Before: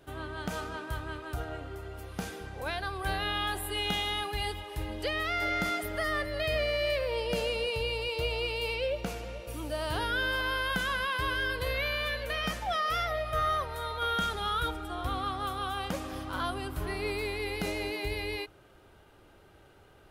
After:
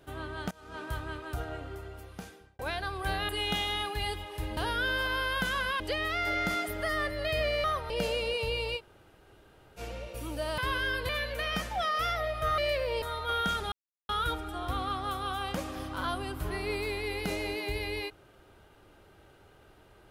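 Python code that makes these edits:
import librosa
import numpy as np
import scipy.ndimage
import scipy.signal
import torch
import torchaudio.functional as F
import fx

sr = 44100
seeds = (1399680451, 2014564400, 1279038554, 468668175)

y = fx.edit(x, sr, fx.fade_in_from(start_s=0.51, length_s=0.3, curve='qua', floor_db=-23.5),
    fx.fade_out_span(start_s=1.73, length_s=0.86),
    fx.cut(start_s=3.29, length_s=0.38),
    fx.swap(start_s=6.79, length_s=0.44, other_s=13.49, other_length_s=0.26),
    fx.room_tone_fill(start_s=8.11, length_s=1.01, crossfade_s=0.06),
    fx.move(start_s=9.91, length_s=1.23, to_s=4.95),
    fx.cut(start_s=11.65, length_s=0.35),
    fx.insert_silence(at_s=14.45, length_s=0.37), tone=tone)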